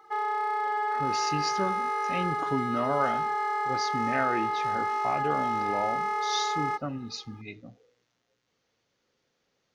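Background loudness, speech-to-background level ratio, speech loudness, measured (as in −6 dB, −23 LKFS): −29.0 LKFS, −4.5 dB, −33.5 LKFS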